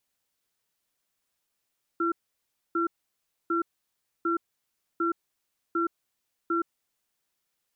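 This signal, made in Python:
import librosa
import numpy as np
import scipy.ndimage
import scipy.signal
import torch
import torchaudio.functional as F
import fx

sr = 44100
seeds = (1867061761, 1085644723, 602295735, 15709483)

y = fx.cadence(sr, length_s=4.73, low_hz=336.0, high_hz=1360.0, on_s=0.12, off_s=0.63, level_db=-26.0)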